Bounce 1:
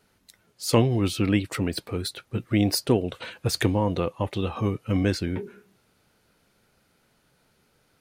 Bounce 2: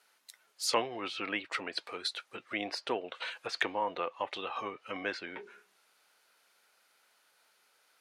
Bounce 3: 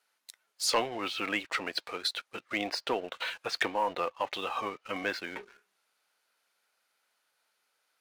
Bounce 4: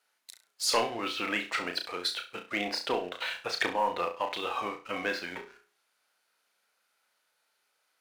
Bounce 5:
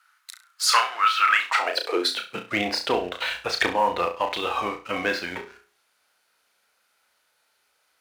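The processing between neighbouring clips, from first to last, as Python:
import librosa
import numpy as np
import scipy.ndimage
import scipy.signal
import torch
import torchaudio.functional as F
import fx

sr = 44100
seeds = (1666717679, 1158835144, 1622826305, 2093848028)

y1 = fx.env_lowpass_down(x, sr, base_hz=2600.0, full_db=-21.5)
y1 = scipy.signal.sosfilt(scipy.signal.butter(2, 830.0, 'highpass', fs=sr, output='sos'), y1)
y2 = fx.peak_eq(y1, sr, hz=390.0, db=-2.0, octaves=0.42)
y2 = fx.leveller(y2, sr, passes=2)
y2 = F.gain(torch.from_numpy(y2), -3.5).numpy()
y3 = fx.room_flutter(y2, sr, wall_m=5.8, rt60_s=0.32)
y4 = fx.filter_sweep_highpass(y3, sr, from_hz=1300.0, to_hz=61.0, start_s=1.38, end_s=2.76, q=4.8)
y4 = F.gain(torch.from_numpy(y4), 6.5).numpy()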